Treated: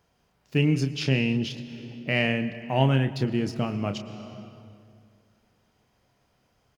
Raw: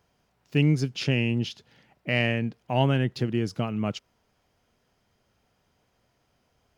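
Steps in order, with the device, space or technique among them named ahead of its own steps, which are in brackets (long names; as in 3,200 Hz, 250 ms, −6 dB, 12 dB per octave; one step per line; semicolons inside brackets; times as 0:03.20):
double-tracking delay 30 ms −9 dB
compressed reverb return (on a send at −5.5 dB: convolution reverb RT60 2.2 s, pre-delay 103 ms + downward compressor 6 to 1, threshold −29 dBFS, peak gain reduction 12.5 dB)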